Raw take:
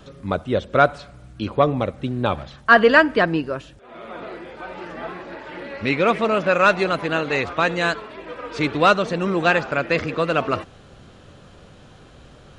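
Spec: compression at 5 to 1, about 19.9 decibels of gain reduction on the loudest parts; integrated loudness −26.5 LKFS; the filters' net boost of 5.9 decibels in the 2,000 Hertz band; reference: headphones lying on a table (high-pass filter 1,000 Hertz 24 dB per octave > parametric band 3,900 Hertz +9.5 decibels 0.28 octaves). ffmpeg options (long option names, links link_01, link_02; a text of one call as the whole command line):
ffmpeg -i in.wav -af "equalizer=frequency=2000:width_type=o:gain=8,acompressor=threshold=-27dB:ratio=5,highpass=frequency=1000:width=0.5412,highpass=frequency=1000:width=1.3066,equalizer=frequency=3900:width_type=o:width=0.28:gain=9.5,volume=6dB" out.wav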